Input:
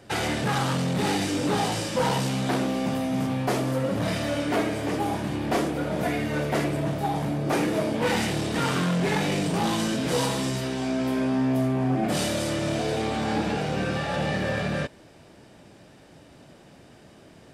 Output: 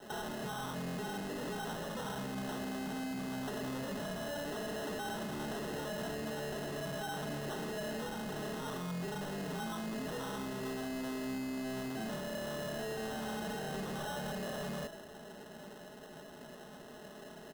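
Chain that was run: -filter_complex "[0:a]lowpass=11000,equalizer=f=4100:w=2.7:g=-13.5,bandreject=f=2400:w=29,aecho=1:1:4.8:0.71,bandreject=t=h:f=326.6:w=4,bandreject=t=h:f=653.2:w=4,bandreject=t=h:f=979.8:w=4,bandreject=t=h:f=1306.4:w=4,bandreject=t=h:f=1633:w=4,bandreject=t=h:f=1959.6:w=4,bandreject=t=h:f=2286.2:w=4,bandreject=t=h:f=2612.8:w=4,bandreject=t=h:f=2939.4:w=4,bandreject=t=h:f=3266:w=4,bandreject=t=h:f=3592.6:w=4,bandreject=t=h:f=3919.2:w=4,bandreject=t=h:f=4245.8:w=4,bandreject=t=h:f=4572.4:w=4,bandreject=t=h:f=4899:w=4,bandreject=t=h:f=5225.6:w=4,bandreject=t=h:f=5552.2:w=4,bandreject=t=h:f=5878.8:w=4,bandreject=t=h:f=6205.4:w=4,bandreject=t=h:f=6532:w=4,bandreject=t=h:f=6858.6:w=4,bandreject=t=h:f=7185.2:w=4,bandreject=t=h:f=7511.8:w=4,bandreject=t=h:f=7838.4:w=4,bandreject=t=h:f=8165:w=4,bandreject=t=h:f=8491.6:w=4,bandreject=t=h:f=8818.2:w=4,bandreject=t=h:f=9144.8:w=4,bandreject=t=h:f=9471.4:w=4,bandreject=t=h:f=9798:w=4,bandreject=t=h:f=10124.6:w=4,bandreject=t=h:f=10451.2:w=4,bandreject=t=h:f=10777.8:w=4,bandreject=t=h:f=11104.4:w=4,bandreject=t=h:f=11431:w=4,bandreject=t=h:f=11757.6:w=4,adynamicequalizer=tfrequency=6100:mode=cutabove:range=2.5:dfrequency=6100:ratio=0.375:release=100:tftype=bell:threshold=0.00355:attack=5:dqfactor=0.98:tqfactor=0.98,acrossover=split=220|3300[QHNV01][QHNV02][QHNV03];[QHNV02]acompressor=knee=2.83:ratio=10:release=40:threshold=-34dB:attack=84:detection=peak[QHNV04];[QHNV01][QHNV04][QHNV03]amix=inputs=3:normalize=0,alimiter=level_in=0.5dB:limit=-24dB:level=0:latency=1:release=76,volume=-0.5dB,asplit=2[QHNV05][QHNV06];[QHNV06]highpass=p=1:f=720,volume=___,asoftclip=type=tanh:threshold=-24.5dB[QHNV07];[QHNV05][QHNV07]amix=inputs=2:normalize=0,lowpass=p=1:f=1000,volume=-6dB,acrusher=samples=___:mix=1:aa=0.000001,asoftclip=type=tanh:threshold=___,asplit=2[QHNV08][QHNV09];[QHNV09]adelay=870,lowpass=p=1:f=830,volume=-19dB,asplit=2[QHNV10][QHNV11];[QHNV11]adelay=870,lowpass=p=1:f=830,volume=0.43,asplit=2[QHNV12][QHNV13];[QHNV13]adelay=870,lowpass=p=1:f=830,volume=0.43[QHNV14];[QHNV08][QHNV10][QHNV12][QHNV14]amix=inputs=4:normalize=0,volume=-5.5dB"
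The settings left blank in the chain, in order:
17dB, 19, -27.5dB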